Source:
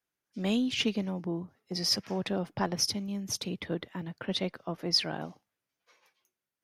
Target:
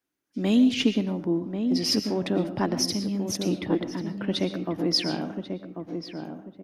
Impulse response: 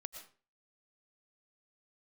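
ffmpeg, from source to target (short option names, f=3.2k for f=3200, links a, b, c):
-filter_complex "[0:a]equalizer=f=290:w=2.3:g=12.5,asplit=2[a][b];[b]adelay=1090,lowpass=f=1.1k:p=1,volume=-6dB,asplit=2[c][d];[d]adelay=1090,lowpass=f=1.1k:p=1,volume=0.32,asplit=2[e][f];[f]adelay=1090,lowpass=f=1.1k:p=1,volume=0.32,asplit=2[g][h];[h]adelay=1090,lowpass=f=1.1k:p=1,volume=0.32[i];[a][c][e][g][i]amix=inputs=5:normalize=0,asplit=2[j][k];[1:a]atrim=start_sample=2205[l];[k][l]afir=irnorm=-1:irlink=0,volume=7dB[m];[j][m]amix=inputs=2:normalize=0,volume=-5.5dB"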